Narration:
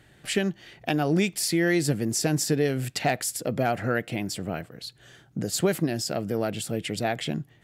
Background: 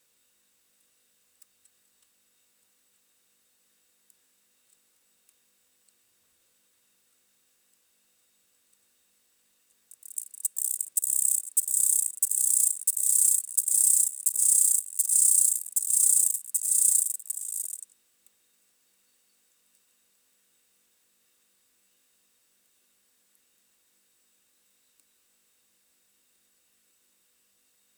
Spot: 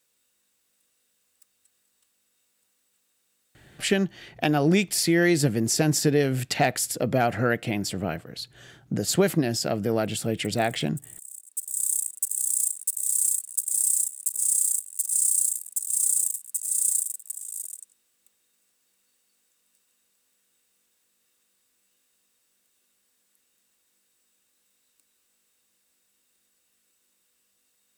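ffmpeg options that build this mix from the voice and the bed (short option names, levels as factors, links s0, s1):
-filter_complex "[0:a]adelay=3550,volume=1.33[s0];[1:a]volume=5.31,afade=t=out:st=3.71:d=0.35:silence=0.149624,afade=t=in:st=11.31:d=0.6:silence=0.141254[s1];[s0][s1]amix=inputs=2:normalize=0"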